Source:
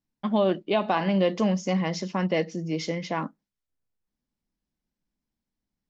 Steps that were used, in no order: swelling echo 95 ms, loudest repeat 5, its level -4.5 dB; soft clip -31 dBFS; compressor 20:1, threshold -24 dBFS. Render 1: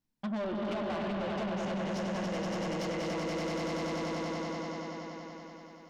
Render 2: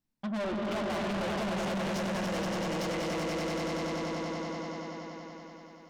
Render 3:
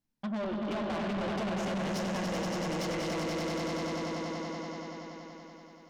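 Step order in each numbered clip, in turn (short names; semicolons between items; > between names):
swelling echo > compressor > soft clip; swelling echo > soft clip > compressor; compressor > swelling echo > soft clip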